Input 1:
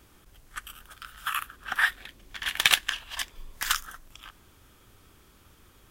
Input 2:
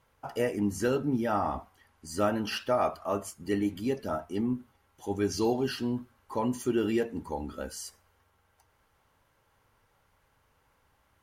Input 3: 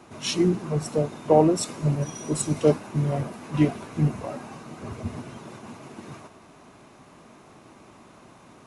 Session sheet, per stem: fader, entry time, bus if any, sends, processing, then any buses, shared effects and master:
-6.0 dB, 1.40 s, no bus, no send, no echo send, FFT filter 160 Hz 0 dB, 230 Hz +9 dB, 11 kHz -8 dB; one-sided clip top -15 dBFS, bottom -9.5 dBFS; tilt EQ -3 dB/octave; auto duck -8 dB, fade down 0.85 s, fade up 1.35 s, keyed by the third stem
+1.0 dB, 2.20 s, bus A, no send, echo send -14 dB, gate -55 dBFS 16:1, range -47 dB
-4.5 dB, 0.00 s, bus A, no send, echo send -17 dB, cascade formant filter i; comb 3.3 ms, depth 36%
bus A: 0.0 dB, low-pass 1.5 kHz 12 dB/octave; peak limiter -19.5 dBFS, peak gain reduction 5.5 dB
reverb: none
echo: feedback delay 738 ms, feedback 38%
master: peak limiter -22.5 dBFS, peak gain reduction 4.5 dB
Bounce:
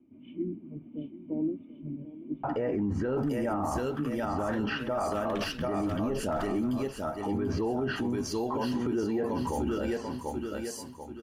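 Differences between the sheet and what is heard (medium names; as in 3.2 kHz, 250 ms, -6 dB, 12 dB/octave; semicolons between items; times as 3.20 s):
stem 1: entry 1.40 s -> 2.70 s; stem 2 +1.0 dB -> +12.5 dB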